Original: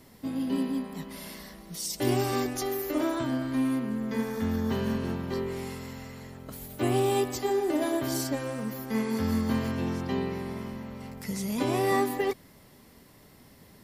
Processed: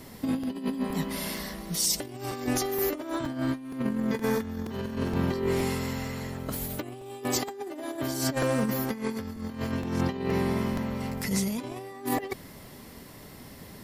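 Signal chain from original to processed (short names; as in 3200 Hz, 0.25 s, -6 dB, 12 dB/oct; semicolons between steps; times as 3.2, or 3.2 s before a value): negative-ratio compressor -33 dBFS, ratio -0.5; 7.23–8.01 HPF 150 Hz 6 dB/oct; crackling interface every 0.47 s, samples 128, repeat, from 0.43; gain +4 dB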